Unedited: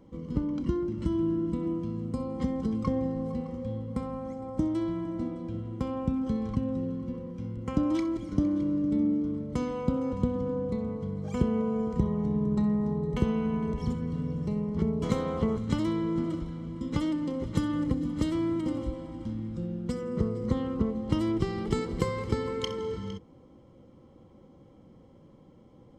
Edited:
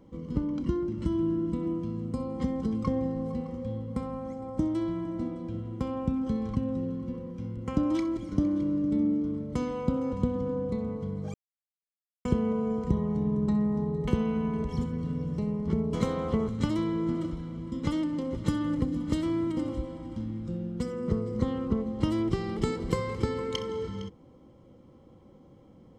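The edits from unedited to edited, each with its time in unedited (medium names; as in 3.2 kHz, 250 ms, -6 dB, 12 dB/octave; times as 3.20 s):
11.34 s: insert silence 0.91 s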